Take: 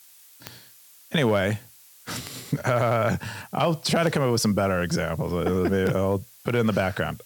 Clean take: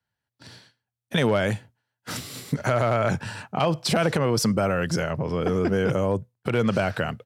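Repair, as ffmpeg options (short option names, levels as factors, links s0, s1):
-af "adeclick=t=4,afftdn=nr=30:nf=-52"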